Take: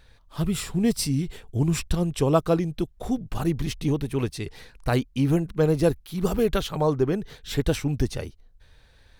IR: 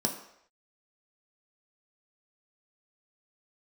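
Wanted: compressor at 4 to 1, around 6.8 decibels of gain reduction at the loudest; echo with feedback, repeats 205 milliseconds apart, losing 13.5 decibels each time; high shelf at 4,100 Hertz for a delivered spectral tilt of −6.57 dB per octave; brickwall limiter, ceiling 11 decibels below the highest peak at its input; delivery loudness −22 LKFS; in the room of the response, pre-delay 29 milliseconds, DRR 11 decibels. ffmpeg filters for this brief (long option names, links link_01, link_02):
-filter_complex "[0:a]highshelf=frequency=4100:gain=-5,acompressor=threshold=-24dB:ratio=4,alimiter=limit=-24dB:level=0:latency=1,aecho=1:1:205|410:0.211|0.0444,asplit=2[link_01][link_02];[1:a]atrim=start_sample=2205,adelay=29[link_03];[link_02][link_03]afir=irnorm=-1:irlink=0,volume=-17.5dB[link_04];[link_01][link_04]amix=inputs=2:normalize=0,volume=11dB"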